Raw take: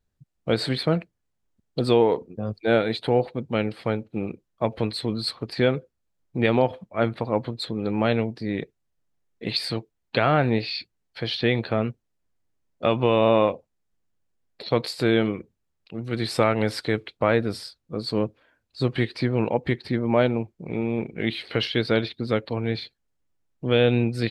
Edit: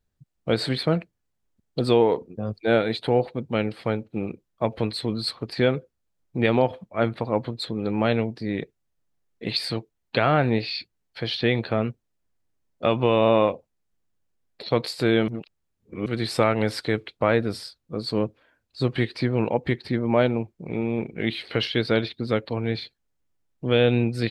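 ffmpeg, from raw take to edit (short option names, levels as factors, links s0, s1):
-filter_complex "[0:a]asplit=3[s0][s1][s2];[s0]atrim=end=15.282[s3];[s1]atrim=start=15.278:end=16.062,asetpts=PTS-STARTPTS,areverse[s4];[s2]atrim=start=16.058[s5];[s3][s4]acrossfade=d=0.004:c1=hsin:c2=hsin[s6];[s6][s5]acrossfade=d=0.004:c1=hsin:c2=hsin"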